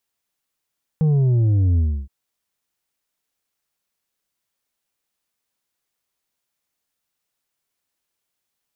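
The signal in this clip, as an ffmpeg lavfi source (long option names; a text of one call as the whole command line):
ffmpeg -f lavfi -i "aevalsrc='0.188*clip((1.07-t)/0.3,0,1)*tanh(1.88*sin(2*PI*160*1.07/log(65/160)*(exp(log(65/160)*t/1.07)-1)))/tanh(1.88)':duration=1.07:sample_rate=44100" out.wav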